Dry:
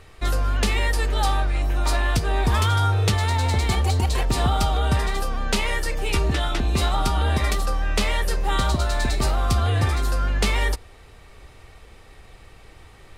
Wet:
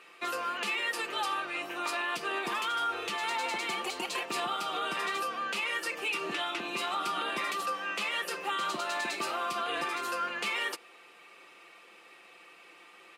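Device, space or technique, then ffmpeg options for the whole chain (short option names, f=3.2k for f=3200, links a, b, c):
laptop speaker: -af "highpass=f=260:w=0.5412,highpass=f=260:w=1.3066,equalizer=f=1.2k:t=o:w=0.51:g=6.5,equalizer=f=2.6k:t=o:w=0.55:g=11,aecho=1:1:5.8:0.51,alimiter=limit=-15.5dB:level=0:latency=1:release=79,volume=-8dB"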